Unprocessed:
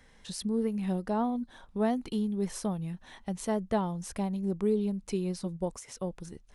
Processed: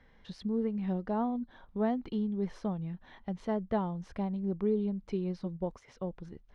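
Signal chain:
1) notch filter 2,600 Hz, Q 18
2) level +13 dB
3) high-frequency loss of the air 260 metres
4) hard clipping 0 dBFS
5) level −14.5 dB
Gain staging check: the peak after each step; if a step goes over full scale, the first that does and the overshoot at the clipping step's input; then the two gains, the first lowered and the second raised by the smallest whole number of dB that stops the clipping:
−15.5, −2.5, −3.5, −3.5, −18.0 dBFS
no step passes full scale

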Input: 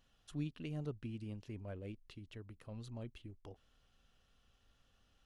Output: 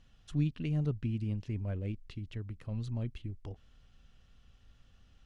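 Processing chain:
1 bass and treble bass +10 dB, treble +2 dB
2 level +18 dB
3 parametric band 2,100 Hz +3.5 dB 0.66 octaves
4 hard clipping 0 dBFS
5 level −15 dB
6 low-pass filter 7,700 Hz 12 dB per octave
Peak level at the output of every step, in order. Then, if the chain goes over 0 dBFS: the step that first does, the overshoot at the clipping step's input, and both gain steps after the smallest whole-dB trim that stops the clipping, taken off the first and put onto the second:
−23.0, −5.0, −5.0, −5.0, −20.0, −20.0 dBFS
no step passes full scale

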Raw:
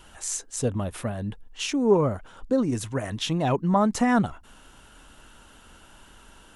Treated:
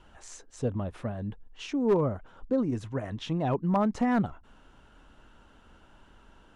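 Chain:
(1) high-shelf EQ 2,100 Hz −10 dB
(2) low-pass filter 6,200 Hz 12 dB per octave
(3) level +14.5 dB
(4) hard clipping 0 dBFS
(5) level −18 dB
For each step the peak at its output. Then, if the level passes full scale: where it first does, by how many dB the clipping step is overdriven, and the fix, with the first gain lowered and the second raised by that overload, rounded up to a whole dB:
−9.0, −9.0, +5.5, 0.0, −18.0 dBFS
step 3, 5.5 dB
step 3 +8.5 dB, step 5 −12 dB

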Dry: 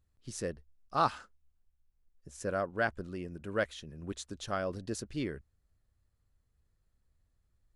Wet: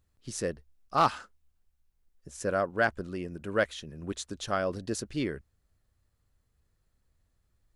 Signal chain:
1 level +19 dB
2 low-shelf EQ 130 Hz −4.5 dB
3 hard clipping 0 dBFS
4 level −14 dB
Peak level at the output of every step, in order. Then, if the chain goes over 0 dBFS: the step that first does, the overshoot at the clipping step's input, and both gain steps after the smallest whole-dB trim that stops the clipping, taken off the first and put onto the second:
+5.0, +5.0, 0.0, −14.0 dBFS
step 1, 5.0 dB
step 1 +14 dB, step 4 −9 dB

